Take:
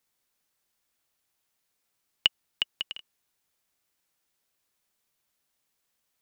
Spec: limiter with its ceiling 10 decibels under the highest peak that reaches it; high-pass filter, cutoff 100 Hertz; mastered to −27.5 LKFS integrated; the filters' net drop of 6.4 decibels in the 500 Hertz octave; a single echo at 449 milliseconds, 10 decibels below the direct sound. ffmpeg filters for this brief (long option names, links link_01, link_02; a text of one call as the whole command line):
ffmpeg -i in.wav -af "highpass=100,equalizer=frequency=500:width_type=o:gain=-8.5,alimiter=limit=-14.5dB:level=0:latency=1,aecho=1:1:449:0.316,volume=10.5dB" out.wav